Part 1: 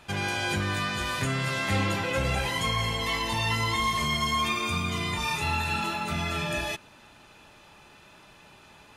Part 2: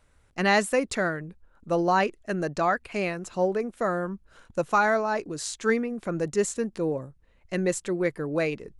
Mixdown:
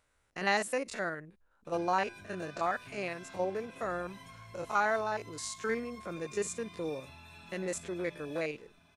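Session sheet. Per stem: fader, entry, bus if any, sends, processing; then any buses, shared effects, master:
-14.0 dB, 1.65 s, no send, echo send -16.5 dB, ripple EQ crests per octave 1.6, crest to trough 8 dB; compressor 5:1, threshold -35 dBFS, peak gain reduction 12.5 dB; notch comb 460 Hz
-4.5 dB, 0.00 s, no send, no echo send, stepped spectrum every 50 ms; low shelf 340 Hz -10 dB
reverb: off
echo: echo 1.009 s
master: dry

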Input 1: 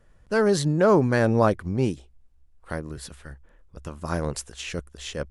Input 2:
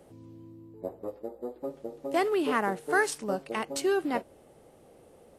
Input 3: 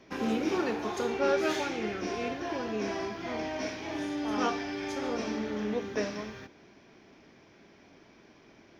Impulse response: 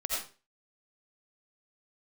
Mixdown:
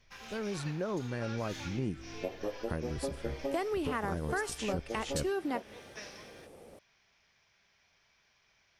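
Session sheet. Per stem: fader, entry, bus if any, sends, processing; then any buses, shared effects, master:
1.71 s -15 dB -> 1.91 s -3 dB, 0.00 s, no send, low shelf 350 Hz +11 dB; harmonic-percussive split harmonic -6 dB
+2.5 dB, 1.40 s, no send, dry
-3.5 dB, 0.00 s, no send, passive tone stack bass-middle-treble 10-0-10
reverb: off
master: compressor 5:1, threshold -31 dBFS, peak gain reduction 12.5 dB

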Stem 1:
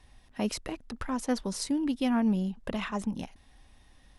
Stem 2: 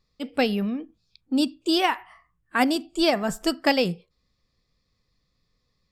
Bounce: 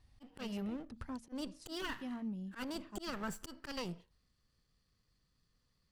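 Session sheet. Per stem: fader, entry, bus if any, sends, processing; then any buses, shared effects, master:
0.97 s -5.5 dB -> 1.58 s -14.5 dB, 0.00 s, no send, bell 100 Hz +12 dB 2.1 oct; de-hum 77.56 Hz, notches 4; upward expander 1.5:1, over -37 dBFS
-4.0 dB, 0.00 s, no send, minimum comb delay 0.66 ms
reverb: off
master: auto swell 0.341 s; compressor 2.5:1, threshold -40 dBFS, peak gain reduction 8 dB

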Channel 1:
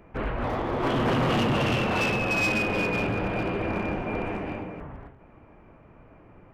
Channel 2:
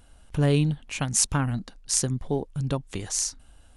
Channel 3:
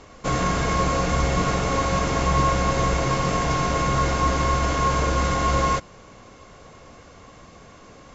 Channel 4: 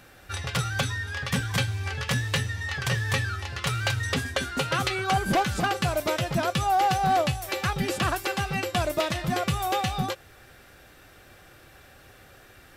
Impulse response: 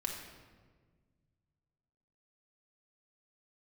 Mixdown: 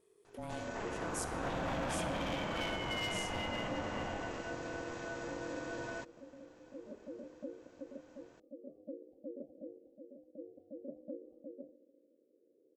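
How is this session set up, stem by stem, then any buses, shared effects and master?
4.09 s -4.5 dB -> 4.63 s -16.5 dB, 0.60 s, no send, dry
-20.0 dB, 0.00 s, send -4 dB, high shelf 9500 Hz +12 dB
-15.5 dB, 0.25 s, no send, dry
-9.5 dB, 1.60 s, send -15 dB, inverse Chebyshev low-pass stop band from 540 Hz, stop band 60 dB; tremolo triangle 0.56 Hz, depth 70%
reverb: on, RT60 1.5 s, pre-delay 4 ms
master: ring modulator 410 Hz; compressor 1.5:1, threshold -44 dBFS, peak gain reduction 6.5 dB

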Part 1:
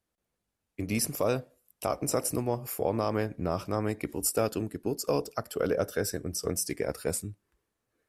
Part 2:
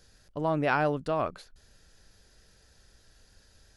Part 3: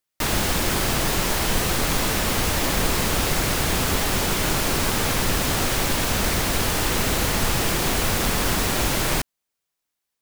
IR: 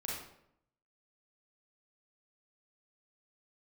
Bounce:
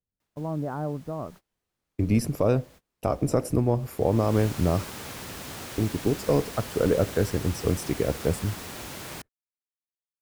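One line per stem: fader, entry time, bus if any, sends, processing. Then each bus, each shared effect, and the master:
+1.5 dB, 1.20 s, muted 4.85–5.78, no send, tilt -3 dB/oct
-8.5 dB, 0.00 s, no send, LPF 1200 Hz 24 dB/oct; bell 160 Hz +10.5 dB 2.4 oct
-15.5 dB, 0.00 s, no send, HPF 74 Hz; auto duck -19 dB, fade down 0.30 s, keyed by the second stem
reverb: off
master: gate -45 dBFS, range -27 dB

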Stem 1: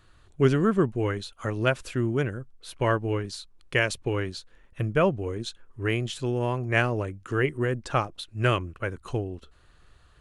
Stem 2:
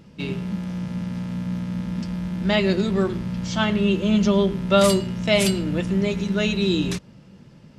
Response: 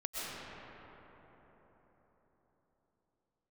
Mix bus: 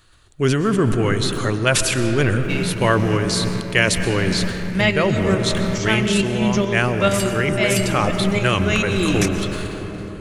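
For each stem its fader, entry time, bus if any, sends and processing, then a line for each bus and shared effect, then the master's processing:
+1.5 dB, 0.00 s, send -10.5 dB, high shelf 2600 Hz +10 dB; sustainer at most 35 dB/s
+1.0 dB, 2.30 s, send -9.5 dB, EQ curve 1200 Hz 0 dB, 2200 Hz +8 dB, 4000 Hz -3 dB, 5900 Hz +6 dB; tremolo saw up 2.3 Hz, depth 55%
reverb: on, RT60 4.5 s, pre-delay 85 ms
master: vocal rider within 4 dB 0.5 s

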